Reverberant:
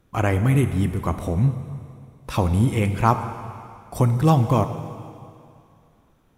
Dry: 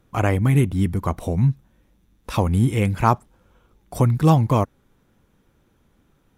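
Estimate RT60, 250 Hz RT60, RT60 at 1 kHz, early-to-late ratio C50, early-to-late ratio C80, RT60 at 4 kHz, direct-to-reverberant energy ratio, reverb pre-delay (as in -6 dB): 2.5 s, 2.3 s, 2.5 s, 9.5 dB, 10.5 dB, 2.4 s, 8.5 dB, 3 ms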